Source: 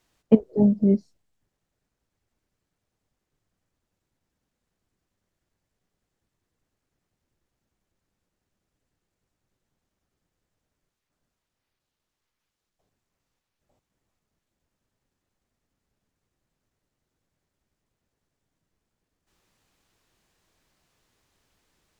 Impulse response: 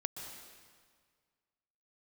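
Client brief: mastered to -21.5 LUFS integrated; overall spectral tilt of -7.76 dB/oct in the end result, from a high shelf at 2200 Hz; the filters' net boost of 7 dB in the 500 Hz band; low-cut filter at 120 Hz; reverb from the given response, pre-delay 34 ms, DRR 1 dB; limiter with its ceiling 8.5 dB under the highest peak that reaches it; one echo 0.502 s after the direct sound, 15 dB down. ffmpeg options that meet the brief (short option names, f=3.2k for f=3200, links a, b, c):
-filter_complex "[0:a]highpass=120,equalizer=f=500:t=o:g=8.5,highshelf=f=2.2k:g=4.5,alimiter=limit=-8dB:level=0:latency=1,aecho=1:1:502:0.178,asplit=2[a][b];[1:a]atrim=start_sample=2205,adelay=34[c];[b][c]afir=irnorm=-1:irlink=0,volume=-1dB[d];[a][d]amix=inputs=2:normalize=0,volume=-2dB"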